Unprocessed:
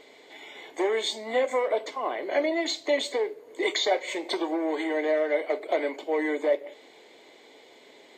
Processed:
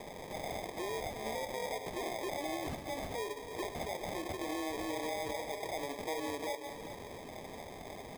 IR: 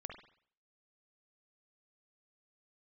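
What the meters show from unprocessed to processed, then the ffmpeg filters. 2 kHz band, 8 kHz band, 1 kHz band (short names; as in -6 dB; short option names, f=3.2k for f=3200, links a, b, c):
-10.5 dB, -5.0 dB, -6.5 dB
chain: -filter_complex "[0:a]highshelf=f=3k:g=11,acompressor=threshold=-33dB:ratio=6,alimiter=level_in=9.5dB:limit=-24dB:level=0:latency=1:release=61,volume=-9.5dB,acrusher=samples=31:mix=1:aa=0.000001,asplit=2[a][b];[b]aecho=0:1:401:0.266[c];[a][c]amix=inputs=2:normalize=0,volume=3dB"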